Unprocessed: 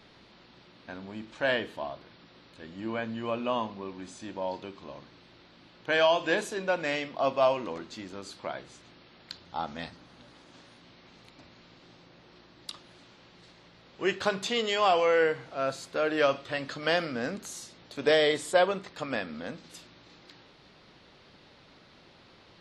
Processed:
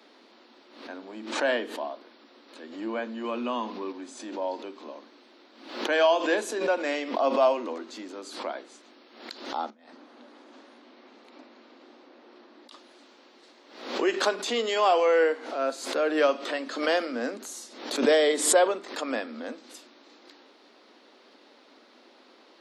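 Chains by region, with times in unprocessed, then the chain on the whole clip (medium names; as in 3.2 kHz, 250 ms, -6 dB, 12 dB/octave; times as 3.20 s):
3.24–3.92 s: peaking EQ 620 Hz -7 dB 0.91 oct + level flattener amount 50%
9.70–12.72 s: low-pass 2.5 kHz 6 dB/octave + compressor with a negative ratio -49 dBFS, ratio -0.5
whole clip: steep high-pass 230 Hz 72 dB/octave; peaking EQ 2.7 kHz -4.5 dB 2.1 oct; swell ahead of each attack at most 85 dB/s; trim +3 dB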